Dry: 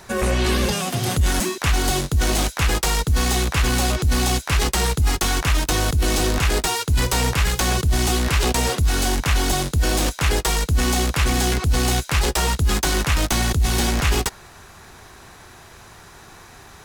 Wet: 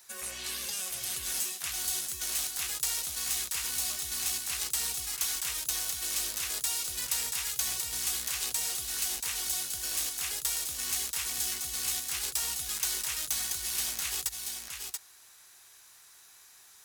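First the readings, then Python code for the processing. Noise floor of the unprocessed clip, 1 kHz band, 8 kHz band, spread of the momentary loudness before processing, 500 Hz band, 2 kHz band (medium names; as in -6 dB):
-45 dBFS, -21.5 dB, -4.0 dB, 1 LU, -27.0 dB, -15.5 dB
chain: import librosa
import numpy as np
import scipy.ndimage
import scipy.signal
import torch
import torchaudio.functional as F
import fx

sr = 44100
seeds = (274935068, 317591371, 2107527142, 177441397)

y = scipy.signal.lfilter([1.0, -0.97], [1.0], x)
y = y + 10.0 ** (-5.0 / 20.0) * np.pad(y, (int(682 * sr / 1000.0), 0))[:len(y)]
y = F.gain(torch.from_numpy(y), -5.5).numpy()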